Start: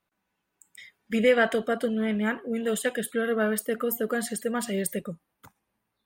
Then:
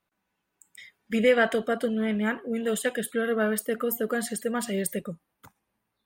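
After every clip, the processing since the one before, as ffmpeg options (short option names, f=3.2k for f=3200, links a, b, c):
-af anull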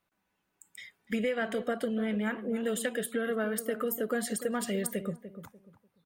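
-filter_complex "[0:a]acompressor=threshold=-28dB:ratio=6,asplit=2[a][b];[b]adelay=295,lowpass=f=830:p=1,volume=-10.5dB,asplit=2[c][d];[d]adelay=295,lowpass=f=830:p=1,volume=0.29,asplit=2[e][f];[f]adelay=295,lowpass=f=830:p=1,volume=0.29[g];[a][c][e][g]amix=inputs=4:normalize=0"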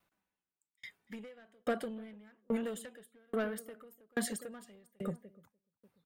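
-af "asoftclip=type=tanh:threshold=-27dB,aeval=exprs='val(0)*pow(10,-40*if(lt(mod(1.2*n/s,1),2*abs(1.2)/1000),1-mod(1.2*n/s,1)/(2*abs(1.2)/1000),(mod(1.2*n/s,1)-2*abs(1.2)/1000)/(1-2*abs(1.2)/1000))/20)':c=same,volume=3.5dB"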